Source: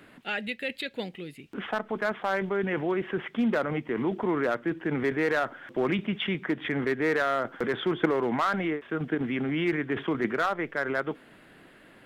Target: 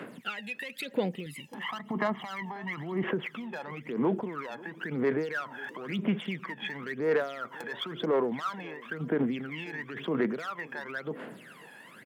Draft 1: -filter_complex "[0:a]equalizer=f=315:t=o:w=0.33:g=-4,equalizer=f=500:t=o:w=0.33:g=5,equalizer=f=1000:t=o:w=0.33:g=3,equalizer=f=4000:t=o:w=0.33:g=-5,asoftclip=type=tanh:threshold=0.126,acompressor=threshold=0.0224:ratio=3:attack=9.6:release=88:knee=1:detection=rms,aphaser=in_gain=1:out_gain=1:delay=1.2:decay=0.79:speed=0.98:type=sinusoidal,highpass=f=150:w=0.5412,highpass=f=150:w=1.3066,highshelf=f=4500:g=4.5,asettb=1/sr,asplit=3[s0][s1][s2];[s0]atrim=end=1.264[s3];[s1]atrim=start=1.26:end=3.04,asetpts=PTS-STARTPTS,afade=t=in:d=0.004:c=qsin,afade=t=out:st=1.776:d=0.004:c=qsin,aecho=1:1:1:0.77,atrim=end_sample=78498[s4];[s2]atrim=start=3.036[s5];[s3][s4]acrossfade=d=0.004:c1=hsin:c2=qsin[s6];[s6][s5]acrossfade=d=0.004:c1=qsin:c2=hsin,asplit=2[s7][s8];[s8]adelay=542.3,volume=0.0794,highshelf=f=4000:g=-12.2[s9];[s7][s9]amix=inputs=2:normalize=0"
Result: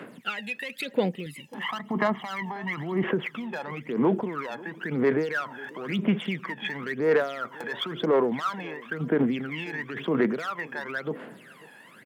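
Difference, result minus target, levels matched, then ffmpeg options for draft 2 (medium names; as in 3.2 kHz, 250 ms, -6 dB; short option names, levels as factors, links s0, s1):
compression: peak gain reduction -4.5 dB
-filter_complex "[0:a]equalizer=f=315:t=o:w=0.33:g=-4,equalizer=f=500:t=o:w=0.33:g=5,equalizer=f=1000:t=o:w=0.33:g=3,equalizer=f=4000:t=o:w=0.33:g=-5,asoftclip=type=tanh:threshold=0.126,acompressor=threshold=0.01:ratio=3:attack=9.6:release=88:knee=1:detection=rms,aphaser=in_gain=1:out_gain=1:delay=1.2:decay=0.79:speed=0.98:type=sinusoidal,highpass=f=150:w=0.5412,highpass=f=150:w=1.3066,highshelf=f=4500:g=4.5,asettb=1/sr,asplit=3[s0][s1][s2];[s0]atrim=end=1.264[s3];[s1]atrim=start=1.26:end=3.04,asetpts=PTS-STARTPTS,afade=t=in:d=0.004:c=qsin,afade=t=out:st=1.776:d=0.004:c=qsin,aecho=1:1:1:0.77,atrim=end_sample=78498[s4];[s2]atrim=start=3.036[s5];[s3][s4]acrossfade=d=0.004:c1=hsin:c2=qsin[s6];[s6][s5]acrossfade=d=0.004:c1=qsin:c2=hsin,asplit=2[s7][s8];[s8]adelay=542.3,volume=0.0794,highshelf=f=4000:g=-12.2[s9];[s7][s9]amix=inputs=2:normalize=0"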